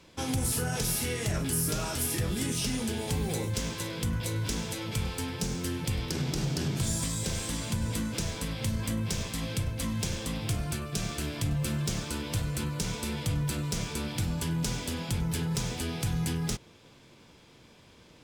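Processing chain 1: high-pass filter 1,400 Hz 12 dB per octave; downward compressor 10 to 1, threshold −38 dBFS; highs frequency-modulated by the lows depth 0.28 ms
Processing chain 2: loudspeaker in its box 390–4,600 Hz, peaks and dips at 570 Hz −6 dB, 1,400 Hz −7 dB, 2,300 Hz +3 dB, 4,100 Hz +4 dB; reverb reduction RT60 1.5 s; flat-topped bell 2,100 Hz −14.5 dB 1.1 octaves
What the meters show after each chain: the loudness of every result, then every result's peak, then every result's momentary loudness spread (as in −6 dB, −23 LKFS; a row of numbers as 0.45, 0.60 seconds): −41.5, −42.5 LKFS; −21.0, −21.5 dBFS; 4, 4 LU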